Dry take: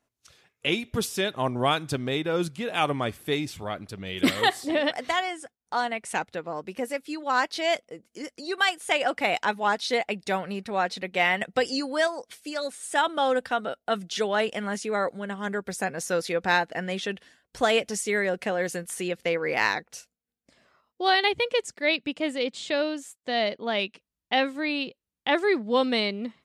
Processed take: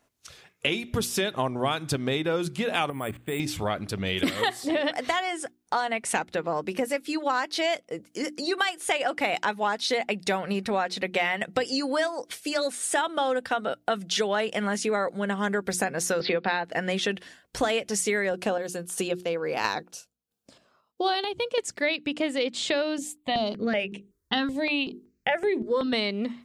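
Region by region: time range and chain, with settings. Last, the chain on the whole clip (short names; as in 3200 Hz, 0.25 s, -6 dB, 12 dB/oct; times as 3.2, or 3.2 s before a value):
2.9–3.4 LPF 3200 Hz 24 dB/oct + level quantiser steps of 18 dB + careless resampling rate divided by 4×, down filtered, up hold
16.2–16.65 Chebyshev band-pass 110–4600 Hz, order 5 + three-band squash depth 70%
18.31–21.58 HPF 62 Hz + chopper 1.5 Hz, depth 60%, duty 40% + bell 2000 Hz -12.5 dB 0.39 oct
22.98–25.93 low shelf 240 Hz +12 dB + notches 50/100/150/200/250/300/350/400/450 Hz + step phaser 5.3 Hz 360–4800 Hz
whole clip: compressor, threshold -31 dBFS; notches 60/120/180/240/300/360 Hz; gain +8 dB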